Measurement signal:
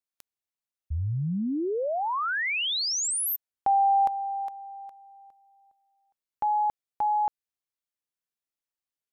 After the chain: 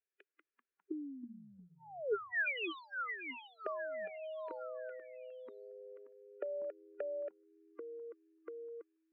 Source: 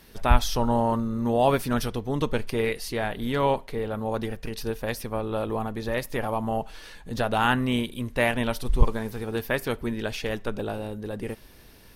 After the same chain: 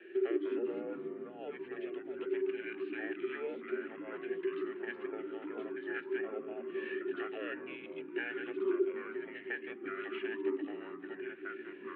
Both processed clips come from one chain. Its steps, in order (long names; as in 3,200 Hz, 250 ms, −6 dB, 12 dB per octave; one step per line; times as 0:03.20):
frequency inversion band by band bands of 500 Hz
high-shelf EQ 2,200 Hz +7 dB
downward compressor 6 to 1, threshold −37 dBFS
formant filter e
delay with pitch and tempo change per echo 152 ms, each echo −3 semitones, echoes 3, each echo −6 dB
high-frequency loss of the air 220 metres
single-sideband voice off tune −130 Hz 520–3,300 Hz
one half of a high-frequency compander decoder only
level +13.5 dB